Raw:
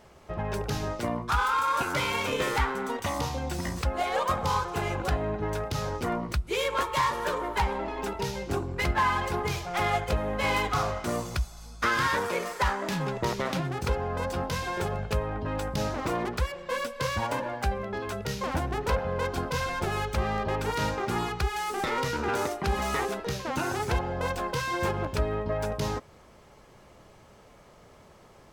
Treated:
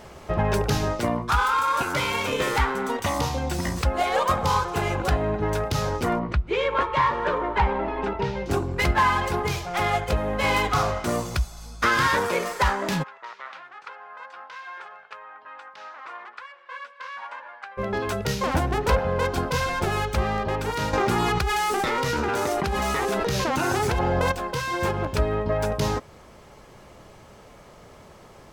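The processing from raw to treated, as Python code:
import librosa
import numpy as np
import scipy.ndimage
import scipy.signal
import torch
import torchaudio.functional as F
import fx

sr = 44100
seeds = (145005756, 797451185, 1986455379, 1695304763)

y = fx.lowpass(x, sr, hz=2600.0, slope=12, at=(6.19, 8.46))
y = fx.ladder_bandpass(y, sr, hz=1600.0, resonance_pct=30, at=(13.02, 17.77), fade=0.02)
y = fx.env_flatten(y, sr, amount_pct=100, at=(20.93, 24.32))
y = fx.rider(y, sr, range_db=10, speed_s=2.0)
y = y * librosa.db_to_amplitude(2.5)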